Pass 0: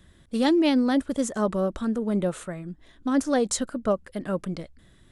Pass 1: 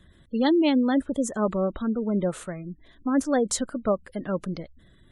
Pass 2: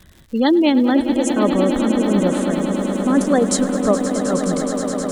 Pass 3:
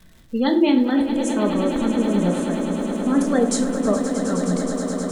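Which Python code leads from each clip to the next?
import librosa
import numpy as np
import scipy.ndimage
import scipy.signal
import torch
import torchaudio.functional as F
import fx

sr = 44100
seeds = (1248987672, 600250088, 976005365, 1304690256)

y1 = fx.spec_gate(x, sr, threshold_db=-30, keep='strong')
y2 = fx.dmg_crackle(y1, sr, seeds[0], per_s=180.0, level_db=-42.0)
y2 = fx.echo_swell(y2, sr, ms=105, loudest=8, wet_db=-12.5)
y2 = y2 * 10.0 ** (6.0 / 20.0)
y3 = fx.room_shoebox(y2, sr, seeds[1], volume_m3=500.0, walls='furnished', distance_m=1.6)
y3 = y3 * 10.0 ** (-5.5 / 20.0)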